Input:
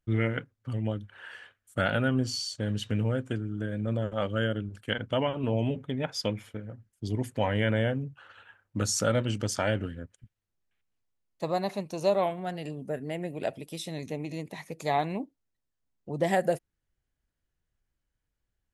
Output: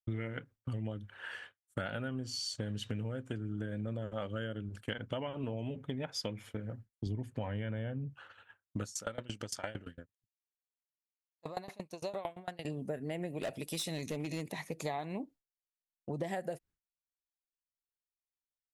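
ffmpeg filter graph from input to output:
-filter_complex "[0:a]asettb=1/sr,asplit=3[a][b][c];[a]atrim=end=7.064[d];[b]atrim=start=7.06:end=8.1,asetpts=PTS-STARTPTS,afade=t=in:d=0.004:c=qsin,afade=t=out:st=1.036:d=0.004:c=qsin,bass=f=250:g=6,treble=f=4k:g=-7,bandreject=f=2k:w=18[e];[c]atrim=start=8.096[f];[d][e]acrossfade=d=0.004:c1=hsin:c2=qsin[g];[g][f]acrossfade=d=0.004:c1=qsin:c2=hsin,asettb=1/sr,asplit=3[h][i][j];[h]atrim=end=8.844[k];[i]atrim=start=8.84:end=12.65,asetpts=PTS-STARTPTS,afade=t=in:d=0.004:c=qsin,afade=t=out:st=3.806:d=0.004:c=qsin,lowshelf=f=450:g=-6.5,aeval=exprs='val(0)*pow(10,-23*if(lt(mod(8.8*n/s,1),2*abs(8.8)/1000),1-mod(8.8*n/s,1)/(2*abs(8.8)/1000),(mod(8.8*n/s,1)-2*abs(8.8)/1000)/(1-2*abs(8.8)/1000))/20)':c=same[l];[j]atrim=start=12.646[m];[k][l]acrossfade=d=0.004:c1=hsin:c2=qsin[n];[n][m]acrossfade=d=0.004:c1=qsin:c2=hsin,asettb=1/sr,asplit=3[o][p][q];[o]atrim=end=13.384[r];[p]atrim=start=13.38:end=14.52,asetpts=PTS-STARTPTS,afade=t=in:d=0.004:c=qsin,afade=t=out:st=1.136:d=0.004:c=qsin,highshelf=f=2.1k:g=6.5,bandreject=f=3.2k:w=21,asoftclip=type=hard:threshold=-28.5dB[s];[q]atrim=start=14.516[t];[r][s]acrossfade=d=0.004:c1=hsin:c2=qsin[u];[u][t]acrossfade=d=0.004:c1=qsin:c2=hsin,agate=range=-33dB:threshold=-46dB:ratio=3:detection=peak,acompressor=threshold=-35dB:ratio=10,volume=1dB"

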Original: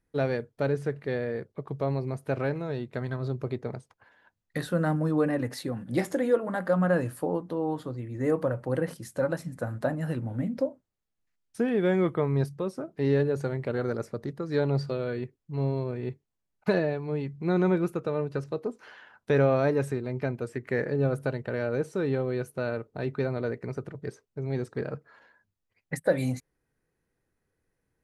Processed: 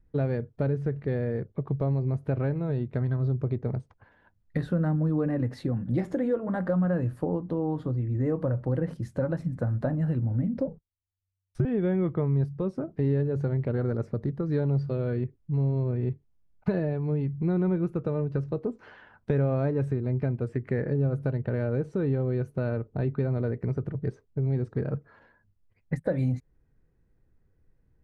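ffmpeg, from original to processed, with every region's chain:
-filter_complex "[0:a]asettb=1/sr,asplit=3[a][b][c];[a]atrim=end=10.674[d];[b]atrim=start=10.67:end=11.65,asetpts=PTS-STARTPTS,afade=t=in:d=0.004:c=qsin,afade=t=out:st=0.976:d=0.004:c=qsin,agate=range=-21dB:threshold=-58dB:ratio=16:release=100:detection=peak,afreqshift=-95[e];[c]atrim=start=11.646[f];[d][e]acrossfade=d=0.004:c1=hsin:c2=qsin[g];[g][f]acrossfade=d=0.004:c1=qsin:c2=hsin,aemphasis=mode=reproduction:type=riaa,acompressor=threshold=-26dB:ratio=2.5"

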